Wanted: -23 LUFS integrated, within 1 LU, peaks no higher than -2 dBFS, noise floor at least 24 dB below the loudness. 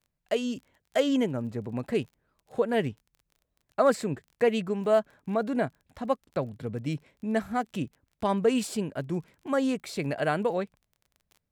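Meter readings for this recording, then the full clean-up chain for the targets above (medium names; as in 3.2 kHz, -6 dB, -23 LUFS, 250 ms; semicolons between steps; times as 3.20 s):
tick rate 26 per s; loudness -29.5 LUFS; peak level -12.0 dBFS; loudness target -23.0 LUFS
-> de-click; trim +6.5 dB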